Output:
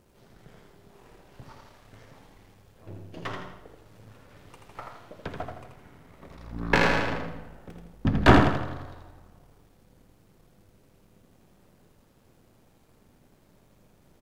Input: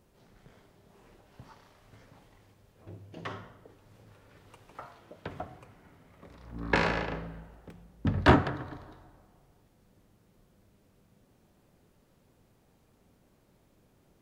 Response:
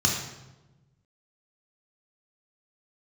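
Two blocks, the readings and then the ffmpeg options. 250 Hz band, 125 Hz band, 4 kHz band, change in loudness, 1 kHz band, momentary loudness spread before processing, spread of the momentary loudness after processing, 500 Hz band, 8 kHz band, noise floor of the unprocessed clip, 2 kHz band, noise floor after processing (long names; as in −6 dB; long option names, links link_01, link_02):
+5.0 dB, +4.5 dB, +5.5 dB, +5.0 dB, +4.5 dB, 25 LU, 25 LU, +4.5 dB, +7.5 dB, −66 dBFS, +5.0 dB, −61 dBFS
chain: -af "aeval=exprs='if(lt(val(0),0),0.447*val(0),val(0))':channel_layout=same,aecho=1:1:82|164|246|328|410:0.562|0.225|0.09|0.036|0.0144,volume=6dB"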